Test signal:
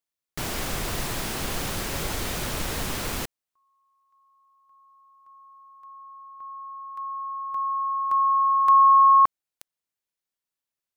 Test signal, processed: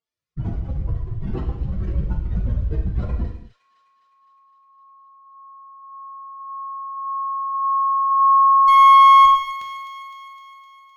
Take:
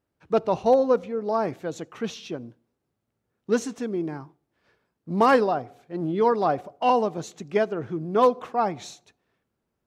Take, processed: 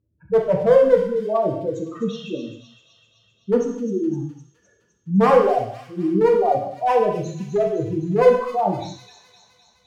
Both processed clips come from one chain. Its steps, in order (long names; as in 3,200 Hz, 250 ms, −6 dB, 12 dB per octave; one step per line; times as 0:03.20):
expanding power law on the bin magnitudes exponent 3.3
high-frequency loss of the air 110 metres
notch filter 870 Hz, Q 18
asymmetric clip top −18 dBFS, bottom −13 dBFS
parametric band 75 Hz +8 dB 1.5 octaves
delay with a high-pass on its return 256 ms, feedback 65%, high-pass 3,200 Hz, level −7 dB
reverb whose tail is shaped and stops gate 280 ms falling, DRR 0 dB
level +3 dB